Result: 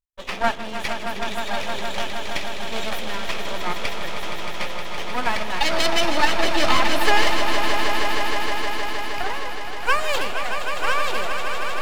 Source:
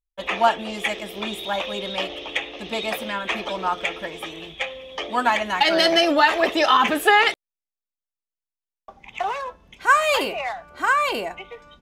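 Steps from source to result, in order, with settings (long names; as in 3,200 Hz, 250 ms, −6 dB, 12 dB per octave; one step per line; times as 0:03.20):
half-wave rectification
echo that builds up and dies away 156 ms, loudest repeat 5, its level −9 dB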